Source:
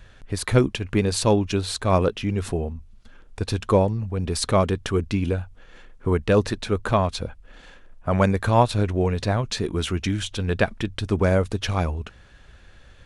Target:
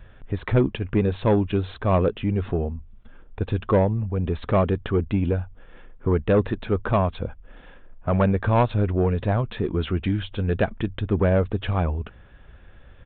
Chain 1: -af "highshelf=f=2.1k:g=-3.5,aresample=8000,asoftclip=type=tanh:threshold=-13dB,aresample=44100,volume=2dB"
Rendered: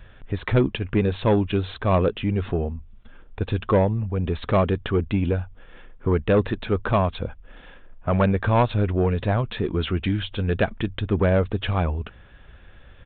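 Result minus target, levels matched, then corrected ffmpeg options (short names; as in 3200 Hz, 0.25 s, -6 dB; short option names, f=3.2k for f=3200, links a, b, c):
4000 Hz band +4.5 dB
-af "highshelf=f=2.1k:g=-10.5,aresample=8000,asoftclip=type=tanh:threshold=-13dB,aresample=44100,volume=2dB"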